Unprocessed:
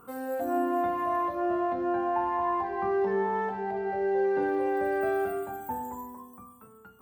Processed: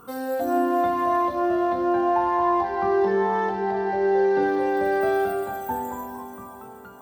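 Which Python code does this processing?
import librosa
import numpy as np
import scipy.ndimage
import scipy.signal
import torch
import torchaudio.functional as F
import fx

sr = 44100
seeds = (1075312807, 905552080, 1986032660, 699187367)

y = fx.band_shelf(x, sr, hz=4500.0, db=8.0, octaves=1.1)
y = fx.echo_diffused(y, sr, ms=453, feedback_pct=58, wet_db=-14)
y = y * librosa.db_to_amplitude(5.5)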